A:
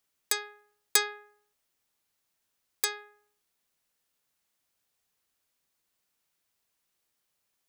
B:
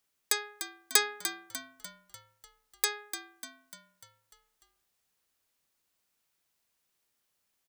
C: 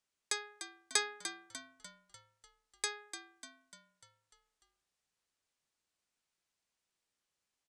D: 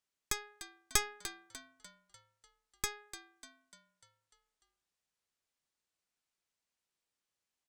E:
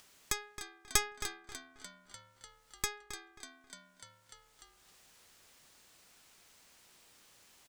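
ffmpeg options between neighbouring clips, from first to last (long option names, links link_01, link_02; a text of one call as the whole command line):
ffmpeg -i in.wav -filter_complex "[0:a]asplit=7[link_01][link_02][link_03][link_04][link_05][link_06][link_07];[link_02]adelay=297,afreqshift=-77,volume=-10dB[link_08];[link_03]adelay=594,afreqshift=-154,volume=-15.7dB[link_09];[link_04]adelay=891,afreqshift=-231,volume=-21.4dB[link_10];[link_05]adelay=1188,afreqshift=-308,volume=-27dB[link_11];[link_06]adelay=1485,afreqshift=-385,volume=-32.7dB[link_12];[link_07]adelay=1782,afreqshift=-462,volume=-38.4dB[link_13];[link_01][link_08][link_09][link_10][link_11][link_12][link_13]amix=inputs=7:normalize=0" out.wav
ffmpeg -i in.wav -af "lowpass=frequency=9200:width=0.5412,lowpass=frequency=9200:width=1.3066,volume=-6dB" out.wav
ffmpeg -i in.wav -af "aeval=exprs='0.178*(cos(1*acos(clip(val(0)/0.178,-1,1)))-cos(1*PI/2))+0.0178*(cos(3*acos(clip(val(0)/0.178,-1,1)))-cos(3*PI/2))+0.0631*(cos(4*acos(clip(val(0)/0.178,-1,1)))-cos(4*PI/2))':channel_layout=same" out.wav
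ffmpeg -i in.wav -filter_complex "[0:a]acompressor=mode=upward:threshold=-43dB:ratio=2.5,asplit=2[link_01][link_02];[link_02]adelay=268,lowpass=frequency=3900:poles=1,volume=-10dB,asplit=2[link_03][link_04];[link_04]adelay=268,lowpass=frequency=3900:poles=1,volume=0.28,asplit=2[link_05][link_06];[link_06]adelay=268,lowpass=frequency=3900:poles=1,volume=0.28[link_07];[link_01][link_03][link_05][link_07]amix=inputs=4:normalize=0,volume=1dB" out.wav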